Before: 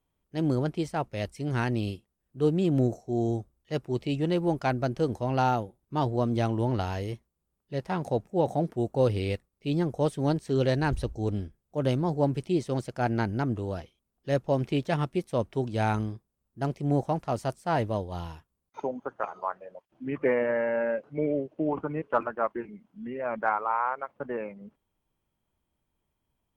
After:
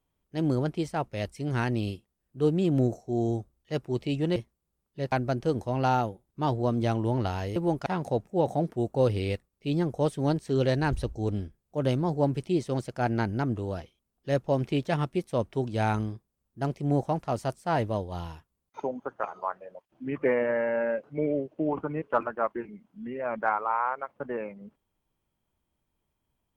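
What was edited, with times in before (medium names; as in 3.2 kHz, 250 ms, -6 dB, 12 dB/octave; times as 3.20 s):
4.36–4.66 s: swap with 7.10–7.86 s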